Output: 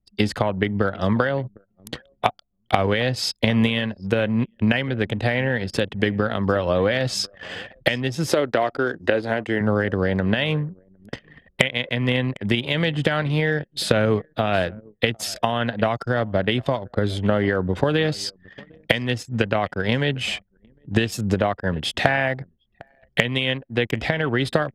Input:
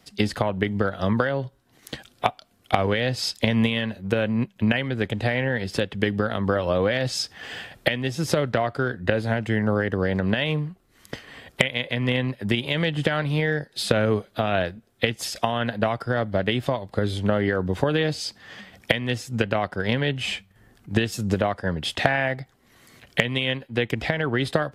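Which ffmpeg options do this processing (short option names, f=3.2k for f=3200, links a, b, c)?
-filter_complex "[0:a]asettb=1/sr,asplit=3[a][b][c];[a]atrim=end=8.284[d];[b]atrim=start=8.28:end=9.61,asetpts=PTS-STARTPTS,afade=t=in:d=0.004:c=qsin,afade=t=out:st=1.326:d=0.004:c=qsin,lowshelf=f=220:t=q:w=1.5:g=-8[e];[c]atrim=start=9.606[f];[d][e]acrossfade=d=0.004:c1=hsin:c2=qsin[g];[g][f]acrossfade=d=0.004:c1=qsin:c2=hsin,aecho=1:1:754|1508:0.075|0.015,anlmdn=1.58,volume=2dB"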